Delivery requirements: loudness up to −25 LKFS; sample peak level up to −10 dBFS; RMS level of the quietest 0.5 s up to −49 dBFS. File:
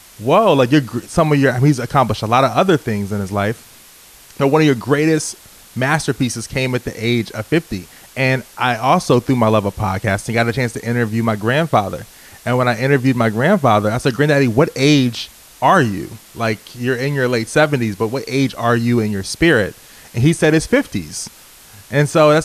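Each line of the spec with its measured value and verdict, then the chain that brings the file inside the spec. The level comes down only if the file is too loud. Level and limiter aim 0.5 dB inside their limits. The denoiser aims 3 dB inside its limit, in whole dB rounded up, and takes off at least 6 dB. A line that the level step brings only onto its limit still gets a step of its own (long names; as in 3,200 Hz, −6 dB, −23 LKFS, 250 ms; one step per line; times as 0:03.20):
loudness −16.5 LKFS: out of spec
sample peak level −1.5 dBFS: out of spec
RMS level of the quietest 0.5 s −43 dBFS: out of spec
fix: level −9 dB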